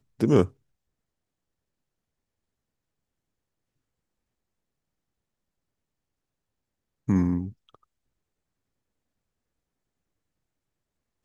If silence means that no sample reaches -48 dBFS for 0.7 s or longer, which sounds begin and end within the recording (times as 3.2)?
7.08–7.75